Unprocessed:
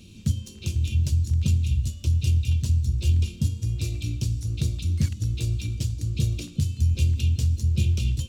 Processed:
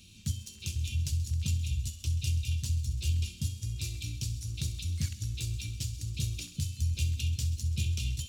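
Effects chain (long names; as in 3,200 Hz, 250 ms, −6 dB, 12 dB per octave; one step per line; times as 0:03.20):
guitar amp tone stack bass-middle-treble 5-5-5
on a send: delay with a high-pass on its return 66 ms, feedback 77%, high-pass 2,100 Hz, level −14 dB
on the sum: level +5.5 dB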